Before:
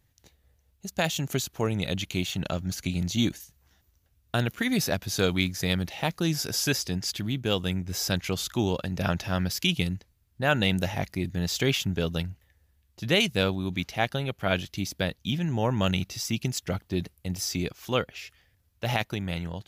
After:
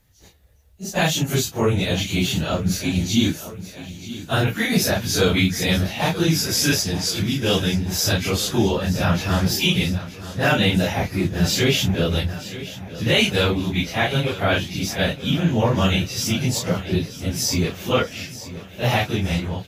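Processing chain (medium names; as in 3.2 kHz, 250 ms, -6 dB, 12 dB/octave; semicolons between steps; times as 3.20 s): phase randomisation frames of 100 ms; in parallel at +1.5 dB: peak limiter -19 dBFS, peak gain reduction 8 dB; on the sum: feedback delay 930 ms, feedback 58%, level -15 dB; trim +1.5 dB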